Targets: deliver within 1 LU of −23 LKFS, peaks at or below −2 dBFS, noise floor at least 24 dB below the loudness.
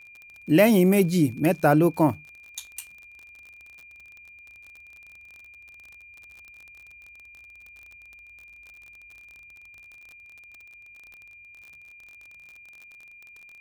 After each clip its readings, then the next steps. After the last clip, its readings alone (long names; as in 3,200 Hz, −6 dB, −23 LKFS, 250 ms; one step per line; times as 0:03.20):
crackle rate 36 per second; interfering tone 2,400 Hz; level of the tone −46 dBFS; integrated loudness −21.0 LKFS; sample peak −5.5 dBFS; target loudness −23.0 LKFS
→ click removal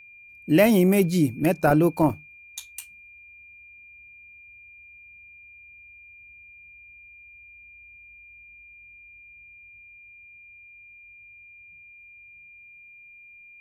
crackle rate 0.29 per second; interfering tone 2,400 Hz; level of the tone −46 dBFS
→ notch filter 2,400 Hz, Q 30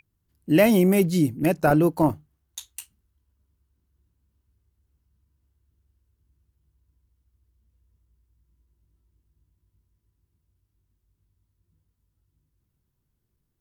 interfering tone none found; integrated loudness −20.5 LKFS; sample peak −6.0 dBFS; target loudness −23.0 LKFS
→ level −2.5 dB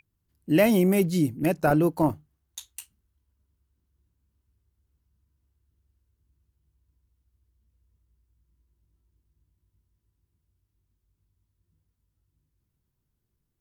integrated loudness −23.0 LKFS; sample peak −8.5 dBFS; background noise floor −79 dBFS